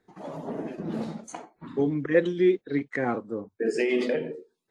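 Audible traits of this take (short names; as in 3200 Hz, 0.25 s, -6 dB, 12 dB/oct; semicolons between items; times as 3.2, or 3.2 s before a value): tremolo triangle 3.3 Hz, depth 40%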